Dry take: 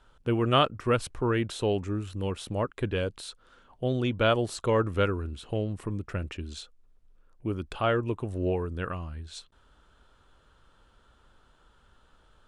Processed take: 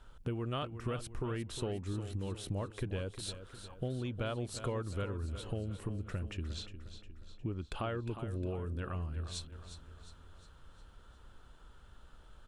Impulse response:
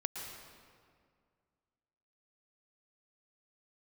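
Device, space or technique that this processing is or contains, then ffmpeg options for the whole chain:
ASMR close-microphone chain: -filter_complex "[0:a]lowshelf=f=170:g=7.5,acompressor=threshold=-34dB:ratio=6,highshelf=f=9k:g=5.5,asettb=1/sr,asplit=3[a][b][c];[a]atrim=end=6.474[d];[b]atrim=start=6.47:end=7.67,asetpts=PTS-STARTPTS,afade=t=in:d=0.004:c=qsin,afade=t=out:st=1.196:d=0.004:c=qsin,lowpass=5.5k[e];[c]atrim=start=7.666[f];[d][e]acrossfade=d=0.004:c1=hsin:c2=qsin[g];[g][f]acrossfade=d=0.004:c1=qsin:c2=hsin,aecho=1:1:357|714|1071|1428|1785:0.282|0.138|0.0677|0.0332|0.0162,volume=-1dB"

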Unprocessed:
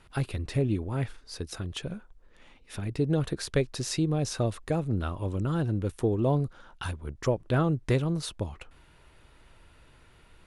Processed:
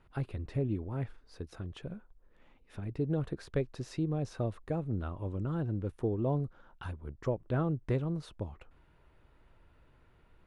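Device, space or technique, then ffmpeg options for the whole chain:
through cloth: -af "highshelf=f=3k:g=-16.5,volume=-5.5dB"

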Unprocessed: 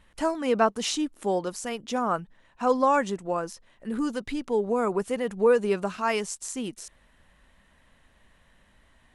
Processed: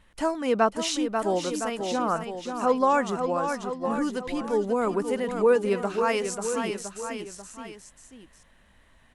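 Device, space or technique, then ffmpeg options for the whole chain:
ducked delay: -filter_complex "[0:a]asettb=1/sr,asplit=3[a][b][c];[a]atrim=end=1.714[d];[b]atrim=start=1.71:end=2.8,asetpts=PTS-STARTPTS,afade=t=in:d=0.004:c=qsin,afade=t=out:st=1.086:d=0.004:c=qsin,lowpass=6.1k[e];[c]atrim=start=2.796[f];[d][e]acrossfade=d=0.004:c1=hsin:c2=qsin[g];[g][f]acrossfade=d=0.004:c1=qsin:c2=hsin,asplit=3[h][i][j];[i]adelay=540,volume=-6dB[k];[j]apad=whole_len=427260[l];[k][l]sidechaincompress=threshold=-25dB:ratio=8:attack=8.8:release=249[m];[h][m]amix=inputs=2:normalize=0,aecho=1:1:1012:0.299"

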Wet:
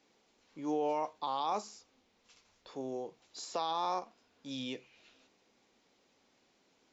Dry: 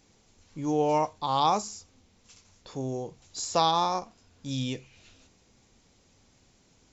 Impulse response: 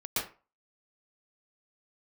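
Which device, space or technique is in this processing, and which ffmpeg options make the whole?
DJ mixer with the lows and highs turned down: -filter_complex "[0:a]acrossover=split=230 5100:gain=0.0794 1 0.178[a][b][c];[a][b][c]amix=inputs=3:normalize=0,alimiter=limit=-20dB:level=0:latency=1:release=24,asettb=1/sr,asplit=3[d][e][f];[d]atrim=end=1.754[g];[e]atrim=start=1.75:end=2.72,asetpts=PTS-STARTPTS,afade=t=in:d=0.004:c=qsin,afade=t=out:st=0.966:d=0.004:c=qsin,asubboost=boost=8.5:cutoff=120[h];[f]atrim=start=2.716[i];[g][h]acrossfade=d=0.004:c1=hsin:c2=qsin[j];[j][i]acrossfade=d=0.004:c1=qsin:c2=hsin,volume=-4dB"

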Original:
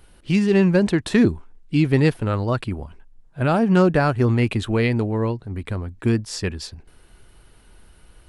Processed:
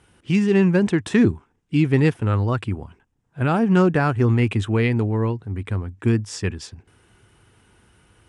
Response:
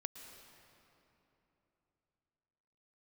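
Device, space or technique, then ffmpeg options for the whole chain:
car door speaker: -af "highpass=92,equalizer=f=100:t=q:w=4:g=7,equalizer=f=600:t=q:w=4:g=-6,equalizer=f=4.3k:t=q:w=4:g=-9,lowpass=f=9.3k:w=0.5412,lowpass=f=9.3k:w=1.3066"

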